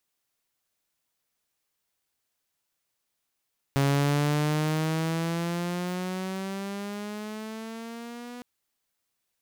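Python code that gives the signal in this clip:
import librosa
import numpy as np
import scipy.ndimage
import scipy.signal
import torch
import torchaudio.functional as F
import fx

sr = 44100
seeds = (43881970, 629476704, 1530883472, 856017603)

y = fx.riser_tone(sr, length_s=4.66, level_db=-18.0, wave='saw', hz=138.0, rise_st=10.0, swell_db=-18.0)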